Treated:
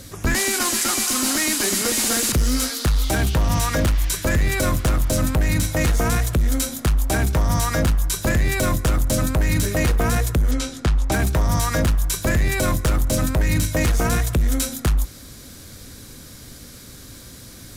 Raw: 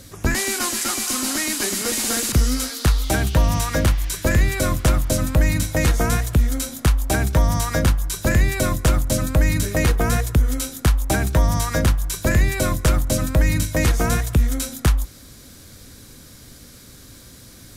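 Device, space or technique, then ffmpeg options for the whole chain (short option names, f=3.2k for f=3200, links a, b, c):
limiter into clipper: -filter_complex "[0:a]asettb=1/sr,asplit=3[a][b][c];[a]atrim=end=10.514[d];[b]atrim=start=10.51:end=11.12,asetpts=PTS-STARTPTS,afade=t=in:d=0.004:c=qsin,afade=t=out:st=0.606:d=0.004:c=qsin,lowpass=5.8k[e];[c]atrim=start=11.116[f];[d][e]acrossfade=d=0.004:c1=hsin:c2=qsin[g];[g][f]acrossfade=d=0.004:c1=qsin:c2=hsin,alimiter=limit=-13.5dB:level=0:latency=1:release=17,asoftclip=type=hard:threshold=-17dB,volume=3dB"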